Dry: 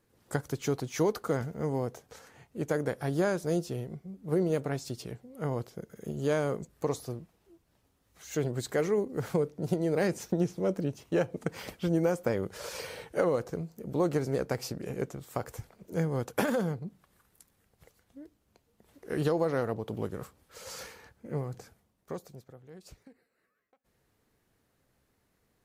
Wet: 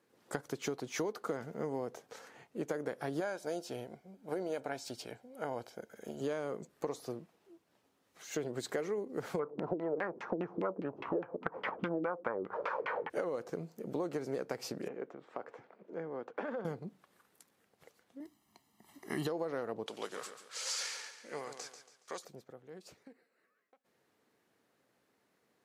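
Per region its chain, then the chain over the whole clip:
0:03.20–0:06.21: parametric band 160 Hz −13.5 dB 0.66 octaves + comb filter 1.3 ms, depth 47%
0:09.39–0:13.10: parametric band 1,100 Hz +13.5 dB 1.2 octaves + upward compression, threshold −27 dBFS + auto-filter low-pass saw down 4.9 Hz 250–2,700 Hz
0:14.88–0:16.65: band-pass filter 240–2,000 Hz + downward compressor 1.5 to 1, threshold −49 dBFS
0:18.20–0:19.27: high-shelf EQ 7,200 Hz +8.5 dB + comb filter 1 ms, depth 96%
0:19.86–0:22.25: meter weighting curve ITU-R 468 + repeating echo 140 ms, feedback 38%, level −9.5 dB
whole clip: high-pass filter 240 Hz 12 dB per octave; high-shelf EQ 7,500 Hz −8.5 dB; downward compressor, threshold −34 dBFS; level +1 dB

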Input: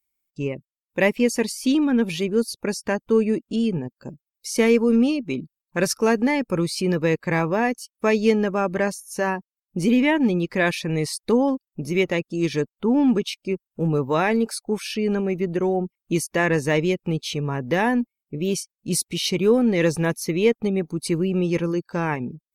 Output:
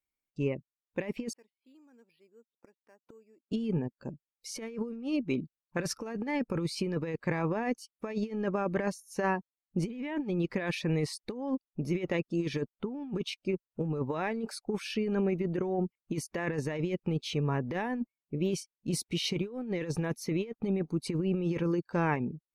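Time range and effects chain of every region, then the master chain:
0:01.33–0:03.52: high-pass filter 330 Hz + gate with flip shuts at −27 dBFS, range −32 dB + bad sample-rate conversion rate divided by 6×, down filtered, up hold
whole clip: low-pass filter 2,900 Hz 6 dB per octave; compressor whose output falls as the input rises −23 dBFS, ratio −0.5; level −7 dB

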